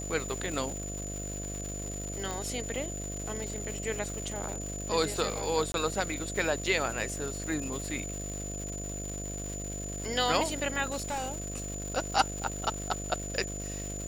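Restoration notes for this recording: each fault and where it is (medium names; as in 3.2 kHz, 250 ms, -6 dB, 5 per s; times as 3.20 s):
buzz 50 Hz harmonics 14 -39 dBFS
crackle 410 per s -36 dBFS
whine 7 kHz -39 dBFS
2.31 s: pop -21 dBFS
5.72–5.74 s: dropout 22 ms
10.88–11.70 s: clipped -29.5 dBFS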